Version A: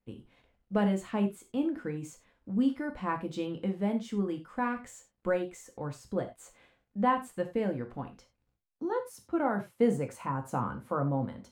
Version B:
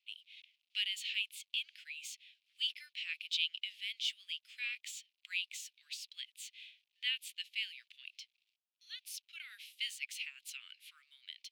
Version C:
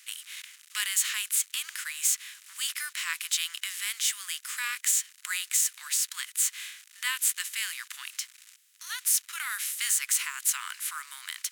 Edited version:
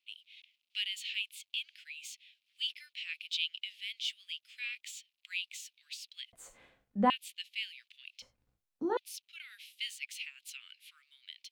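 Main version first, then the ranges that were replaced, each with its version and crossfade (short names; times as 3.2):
B
6.33–7.1 from A
8.22–8.97 from A
not used: C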